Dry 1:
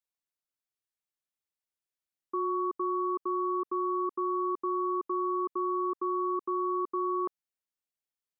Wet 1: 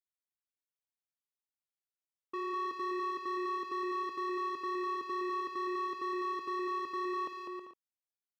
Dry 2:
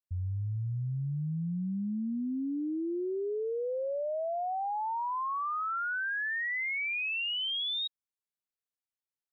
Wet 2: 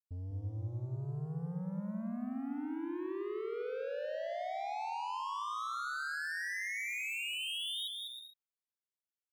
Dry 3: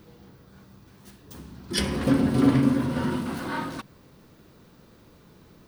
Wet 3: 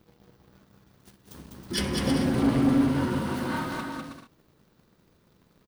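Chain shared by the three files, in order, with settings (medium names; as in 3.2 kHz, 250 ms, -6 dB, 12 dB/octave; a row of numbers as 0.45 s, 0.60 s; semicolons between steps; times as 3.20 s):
waveshaping leveller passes 2; bouncing-ball echo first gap 200 ms, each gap 0.6×, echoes 5; trim -9 dB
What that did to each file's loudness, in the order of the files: -5.0 LU, -5.5 LU, -1.5 LU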